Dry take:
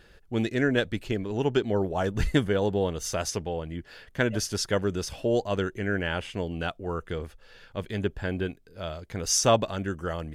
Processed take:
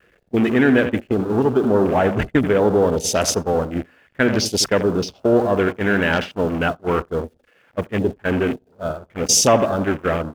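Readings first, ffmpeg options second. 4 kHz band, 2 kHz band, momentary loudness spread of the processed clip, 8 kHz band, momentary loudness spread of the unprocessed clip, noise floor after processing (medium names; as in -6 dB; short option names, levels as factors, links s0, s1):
+8.0 dB, +9.0 dB, 12 LU, +9.5 dB, 12 LU, -59 dBFS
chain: -filter_complex "[0:a]aeval=exprs='val(0)+0.5*0.0447*sgn(val(0))':c=same,aeval=exprs='0.447*(cos(1*acos(clip(val(0)/0.447,-1,1)))-cos(1*PI/2))+0.0158*(cos(5*acos(clip(val(0)/0.447,-1,1)))-cos(5*PI/2))+0.0112*(cos(8*acos(clip(val(0)/0.447,-1,1)))-cos(8*PI/2))':c=same,adynamicequalizer=threshold=0.00708:dfrequency=250:dqfactor=6.1:tfrequency=250:tqfactor=6.1:attack=5:release=100:ratio=0.375:range=2.5:mode=boostabove:tftype=bell,asplit=2[s0][s1];[s1]alimiter=limit=0.15:level=0:latency=1:release=289,volume=0.841[s2];[s0][s2]amix=inputs=2:normalize=0,highpass=f=180:p=1,asplit=2[s3][s4];[s4]adelay=85,lowpass=f=4700:p=1,volume=0.316,asplit=2[s5][s6];[s6]adelay=85,lowpass=f=4700:p=1,volume=0.5,asplit=2[s7][s8];[s8]adelay=85,lowpass=f=4700:p=1,volume=0.5,asplit=2[s9][s10];[s10]adelay=85,lowpass=f=4700:p=1,volume=0.5,asplit=2[s11][s12];[s12]adelay=85,lowpass=f=4700:p=1,volume=0.5[s13];[s3][s5][s7][s9][s11][s13]amix=inputs=6:normalize=0,afwtdn=0.0447,agate=range=0.0355:threshold=0.0794:ratio=16:detection=peak,volume=1.33"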